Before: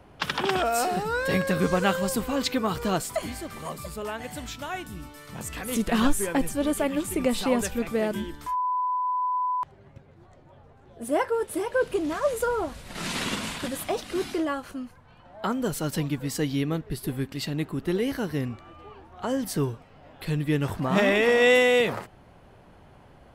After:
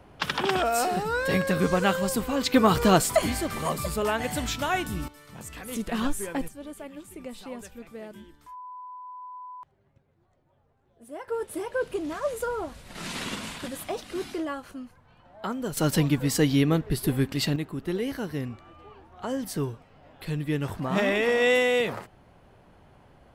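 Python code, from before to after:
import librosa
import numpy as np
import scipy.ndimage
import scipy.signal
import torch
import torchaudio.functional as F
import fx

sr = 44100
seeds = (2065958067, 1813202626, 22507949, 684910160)

y = fx.gain(x, sr, db=fx.steps((0.0, 0.0), (2.54, 7.0), (5.08, -5.5), (6.48, -15.0), (11.28, -4.0), (15.77, 5.0), (17.56, -3.0)))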